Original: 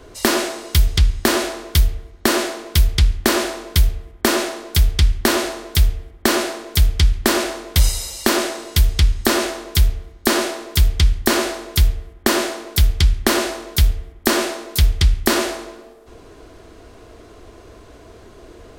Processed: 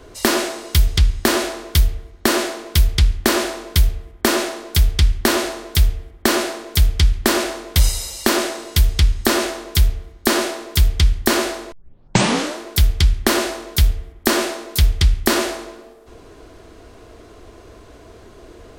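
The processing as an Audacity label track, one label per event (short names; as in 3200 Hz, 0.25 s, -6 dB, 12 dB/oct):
11.720000	11.720000	tape start 0.87 s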